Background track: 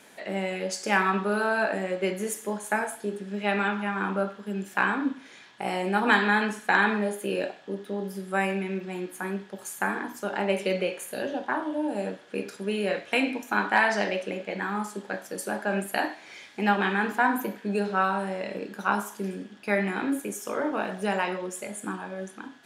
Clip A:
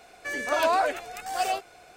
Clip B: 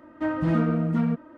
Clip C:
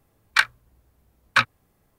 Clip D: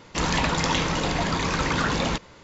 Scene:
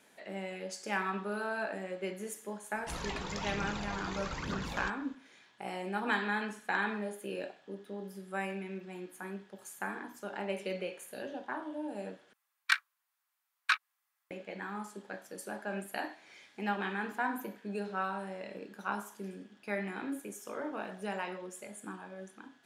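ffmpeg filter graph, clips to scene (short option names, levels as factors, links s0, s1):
-filter_complex "[0:a]volume=0.299[s0];[4:a]aphaser=in_gain=1:out_gain=1:delay=2.9:decay=0.44:speed=1.1:type=triangular[s1];[3:a]highpass=f=1100:w=0.5412,highpass=f=1100:w=1.3066[s2];[s0]asplit=2[s3][s4];[s3]atrim=end=12.334[s5];[s2]atrim=end=1.98,asetpts=PTS-STARTPTS,volume=0.335[s6];[s4]atrim=start=14.306[s7];[s1]atrim=end=2.43,asetpts=PTS-STARTPTS,volume=0.15,afade=t=in:d=0.004:c=hsin,afade=t=out:st=2.426:d=0.004:c=hsin,adelay=2720[s8];[s5][s6]acrossfade=d=0.004:c1=hsin:c2=hsin[s9];[s9][s7]acrossfade=d=0.004:c1=hsin:c2=hsin[s10];[s10][s8]amix=inputs=2:normalize=0"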